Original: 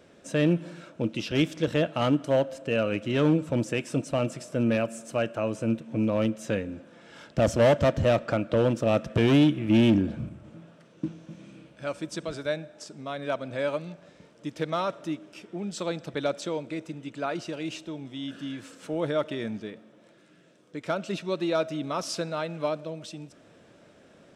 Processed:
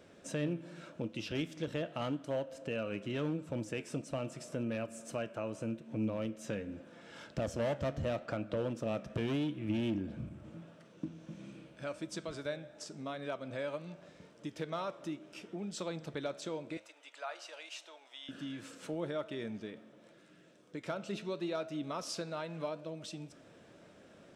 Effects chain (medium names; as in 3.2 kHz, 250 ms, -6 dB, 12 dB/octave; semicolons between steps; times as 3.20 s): compression 2:1, threshold -37 dBFS, peak gain reduction 11.5 dB; 16.77–18.29 s: high-pass 640 Hz 24 dB/octave; flange 0.83 Hz, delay 9 ms, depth 6.3 ms, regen +84%; trim +1.5 dB